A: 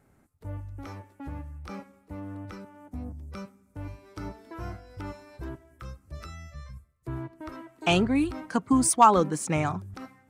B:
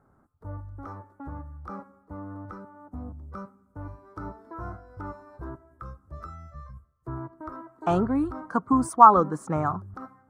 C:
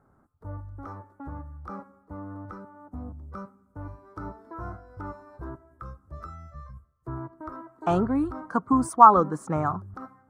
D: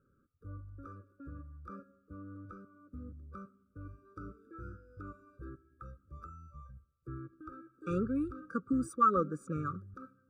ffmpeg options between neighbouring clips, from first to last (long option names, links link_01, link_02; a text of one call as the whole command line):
ffmpeg -i in.wav -af "highshelf=frequency=1800:width_type=q:width=3:gain=-12.5,volume=-1dB" out.wav
ffmpeg -i in.wav -af anull out.wav
ffmpeg -i in.wav -af "afftfilt=real='re*eq(mod(floor(b*sr/1024/560),2),0)':imag='im*eq(mod(floor(b*sr/1024/560),2),0)':win_size=1024:overlap=0.75,volume=-8dB" out.wav